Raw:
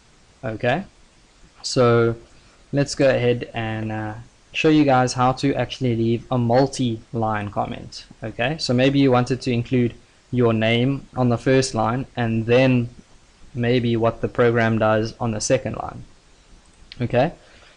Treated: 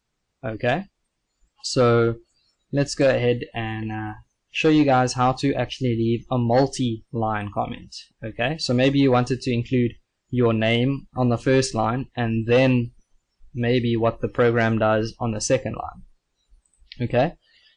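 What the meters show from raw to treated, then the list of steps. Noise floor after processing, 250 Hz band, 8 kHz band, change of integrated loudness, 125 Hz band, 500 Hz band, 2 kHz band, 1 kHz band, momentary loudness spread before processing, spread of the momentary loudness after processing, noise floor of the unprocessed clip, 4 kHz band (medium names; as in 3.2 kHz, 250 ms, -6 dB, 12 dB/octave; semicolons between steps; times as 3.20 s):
-77 dBFS, -1.5 dB, -1.5 dB, -1.5 dB, -1.5 dB, -1.5 dB, -1.5 dB, -1.5 dB, 13 LU, 13 LU, -54 dBFS, -1.5 dB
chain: spectral noise reduction 22 dB; trim -1.5 dB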